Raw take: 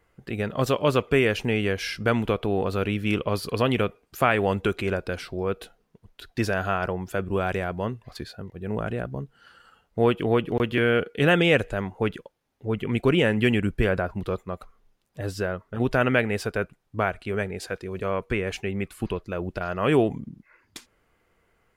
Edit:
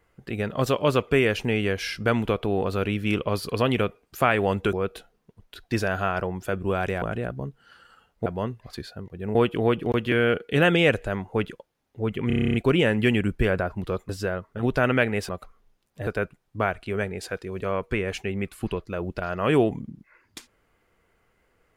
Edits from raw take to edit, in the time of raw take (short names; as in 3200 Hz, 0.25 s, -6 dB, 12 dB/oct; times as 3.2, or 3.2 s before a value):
4.73–5.39 cut
7.68–8.77 move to 10.01
12.93 stutter 0.03 s, 10 plays
14.48–15.26 move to 16.46